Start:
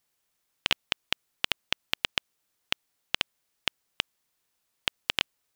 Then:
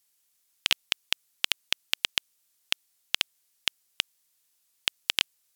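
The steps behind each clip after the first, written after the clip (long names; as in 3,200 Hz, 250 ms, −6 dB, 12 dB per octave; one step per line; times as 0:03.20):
parametric band 12,000 Hz +15 dB 3 octaves
level −6.5 dB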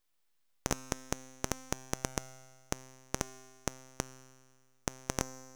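full-wave rectification
tuned comb filter 130 Hz, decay 1.7 s, mix 70%
level +2.5 dB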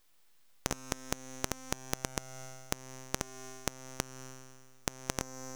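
downward compressor 6 to 1, threshold −41 dBFS, peak gain reduction 16 dB
level +11 dB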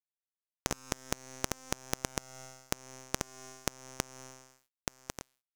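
fade-out on the ending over 1.03 s
dead-zone distortion −45.5 dBFS
level +1 dB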